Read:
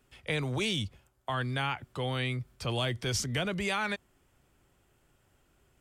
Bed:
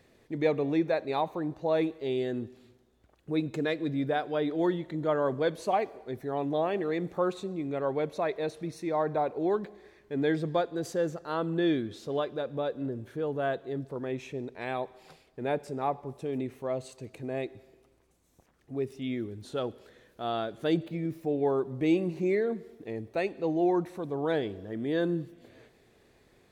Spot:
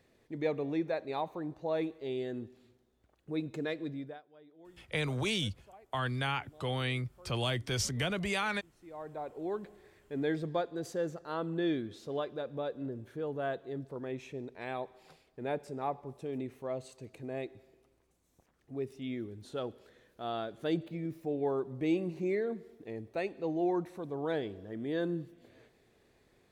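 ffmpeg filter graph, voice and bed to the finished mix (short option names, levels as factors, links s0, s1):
-filter_complex "[0:a]adelay=4650,volume=0.841[s0];[1:a]volume=7.94,afade=t=out:st=3.81:d=0.41:silence=0.0707946,afade=t=in:st=8.71:d=1.23:silence=0.0630957[s1];[s0][s1]amix=inputs=2:normalize=0"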